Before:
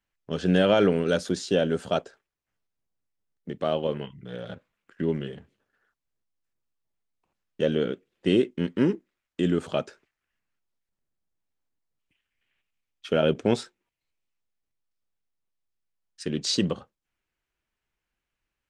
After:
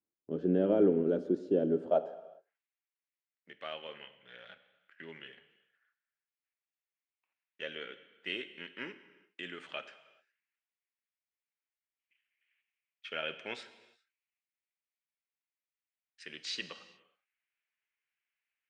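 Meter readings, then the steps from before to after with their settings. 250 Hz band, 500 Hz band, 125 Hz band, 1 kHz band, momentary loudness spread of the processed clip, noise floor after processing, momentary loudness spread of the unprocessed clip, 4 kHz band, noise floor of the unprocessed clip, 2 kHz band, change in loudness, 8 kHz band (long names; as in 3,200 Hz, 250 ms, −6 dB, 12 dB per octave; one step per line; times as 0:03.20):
−9.0 dB, −8.0 dB, −14.0 dB, −10.5 dB, 23 LU, below −85 dBFS, 17 LU, −9.5 dB, below −85 dBFS, −7.0 dB, −8.0 dB, can't be measured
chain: band-pass filter sweep 330 Hz → 2,200 Hz, 0:01.71–0:02.56
reverb whose tail is shaped and stops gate 440 ms falling, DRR 11 dB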